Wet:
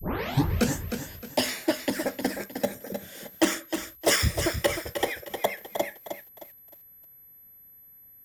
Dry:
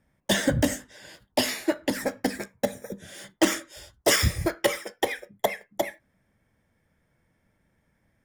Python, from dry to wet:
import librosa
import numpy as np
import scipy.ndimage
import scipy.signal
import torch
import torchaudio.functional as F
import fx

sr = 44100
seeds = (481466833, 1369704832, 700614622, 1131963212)

y = fx.tape_start_head(x, sr, length_s=0.77)
y = y + 10.0 ** (-48.0 / 20.0) * np.sin(2.0 * np.pi * 12000.0 * np.arange(len(y)) / sr)
y = fx.echo_crushed(y, sr, ms=309, feedback_pct=35, bits=8, wet_db=-8.0)
y = y * 10.0 ** (-1.5 / 20.0)